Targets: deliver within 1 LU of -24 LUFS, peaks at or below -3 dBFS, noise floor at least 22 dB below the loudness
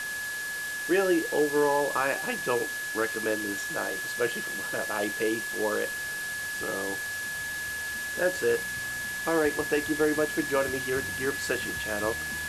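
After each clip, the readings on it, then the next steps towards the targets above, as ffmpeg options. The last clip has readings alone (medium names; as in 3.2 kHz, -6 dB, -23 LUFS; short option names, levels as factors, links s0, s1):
steady tone 1.7 kHz; tone level -32 dBFS; noise floor -34 dBFS; noise floor target -51 dBFS; loudness -28.5 LUFS; peak level -13.5 dBFS; loudness target -24.0 LUFS
-> -af "bandreject=f=1700:w=30"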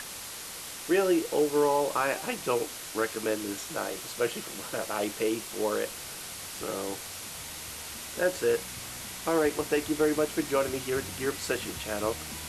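steady tone not found; noise floor -41 dBFS; noise floor target -52 dBFS
-> -af "afftdn=nr=11:nf=-41"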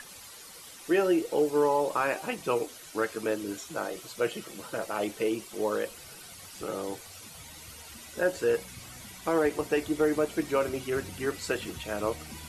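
noise floor -48 dBFS; noise floor target -52 dBFS
-> -af "afftdn=nr=6:nf=-48"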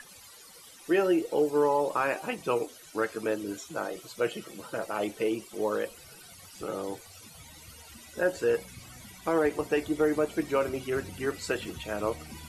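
noise floor -51 dBFS; noise floor target -52 dBFS
-> -af "afftdn=nr=6:nf=-51"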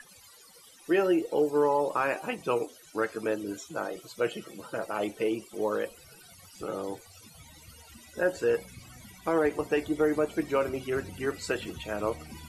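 noise floor -54 dBFS; loudness -30.0 LUFS; peak level -14.5 dBFS; loudness target -24.0 LUFS
-> -af "volume=2"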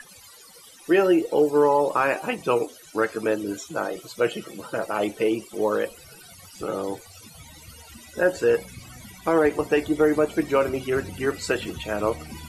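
loudness -24.0 LUFS; peak level -8.5 dBFS; noise floor -48 dBFS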